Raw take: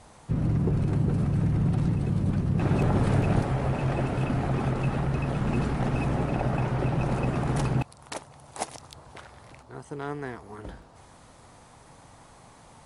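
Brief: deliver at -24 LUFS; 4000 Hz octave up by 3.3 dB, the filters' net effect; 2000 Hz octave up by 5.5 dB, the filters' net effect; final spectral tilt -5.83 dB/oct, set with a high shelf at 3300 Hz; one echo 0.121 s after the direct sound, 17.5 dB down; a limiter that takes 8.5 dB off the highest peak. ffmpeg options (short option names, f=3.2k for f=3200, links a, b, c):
-af "equalizer=f=2k:t=o:g=8,highshelf=f=3.3k:g=-7.5,equalizer=f=4k:t=o:g=6.5,alimiter=limit=-20dB:level=0:latency=1,aecho=1:1:121:0.133,volume=5.5dB"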